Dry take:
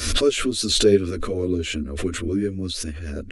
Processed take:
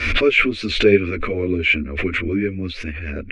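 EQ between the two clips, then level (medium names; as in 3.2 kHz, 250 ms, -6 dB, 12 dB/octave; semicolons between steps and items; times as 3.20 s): resonant low-pass 2.3 kHz, resonance Q 6.8; +2.0 dB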